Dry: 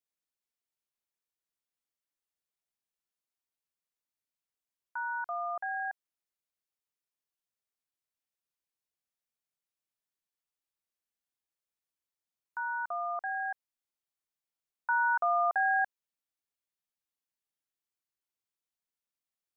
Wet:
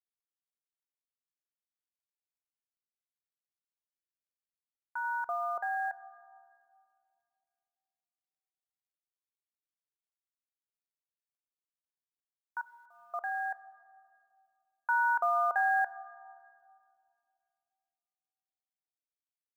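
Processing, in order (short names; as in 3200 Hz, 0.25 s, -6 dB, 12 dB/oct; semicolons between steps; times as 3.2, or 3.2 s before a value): 5.04–5.89 low shelf 440 Hz +10 dB; 12.61–13.14 gate -30 dBFS, range -27 dB; companded quantiser 8-bit; on a send: reverb RT60 2.6 s, pre-delay 6 ms, DRR 16 dB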